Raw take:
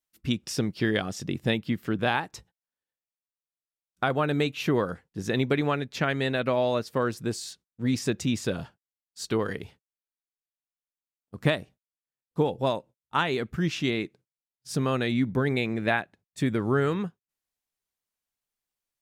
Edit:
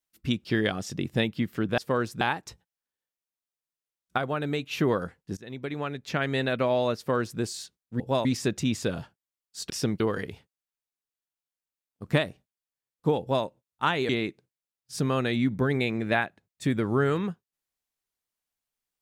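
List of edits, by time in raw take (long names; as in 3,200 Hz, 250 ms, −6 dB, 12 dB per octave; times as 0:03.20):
0:00.45–0:00.75: move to 0:09.32
0:04.05–0:04.58: clip gain −4 dB
0:05.24–0:06.23: fade in, from −23.5 dB
0:06.84–0:07.27: duplicate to 0:02.08
0:12.52–0:12.77: duplicate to 0:07.87
0:13.41–0:13.85: remove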